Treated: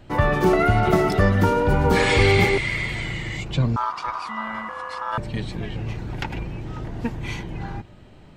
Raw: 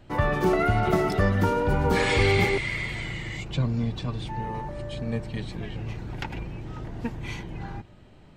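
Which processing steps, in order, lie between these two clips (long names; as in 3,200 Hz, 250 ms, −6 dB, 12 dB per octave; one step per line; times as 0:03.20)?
0:03.76–0:05.18: ring modulation 1,100 Hz
level +4.5 dB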